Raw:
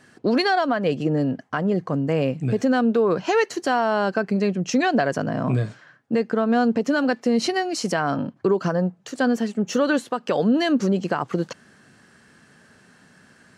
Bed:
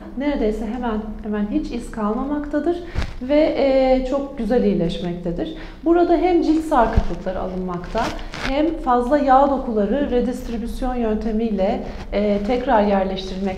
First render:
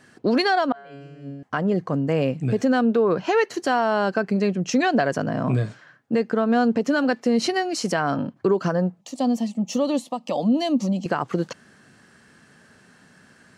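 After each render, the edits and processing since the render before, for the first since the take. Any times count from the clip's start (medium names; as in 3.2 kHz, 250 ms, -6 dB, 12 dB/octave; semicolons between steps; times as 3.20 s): 0.72–1.43 s: feedback comb 140 Hz, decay 1.4 s, mix 100%; 2.81–3.54 s: dynamic bell 7.4 kHz, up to -6 dB, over -46 dBFS, Q 0.76; 9.01–11.06 s: static phaser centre 410 Hz, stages 6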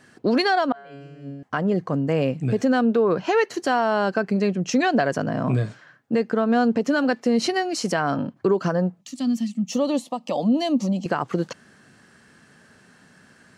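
9.03–9.72 s: high-order bell 610 Hz -15 dB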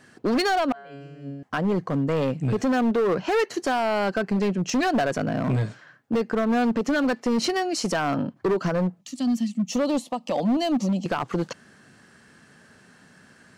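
hard clipper -18.5 dBFS, distortion -12 dB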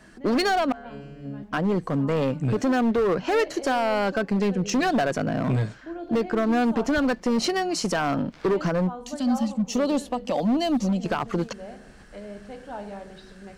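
add bed -20.5 dB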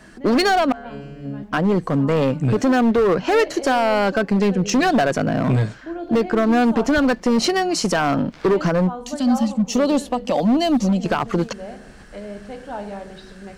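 trim +5.5 dB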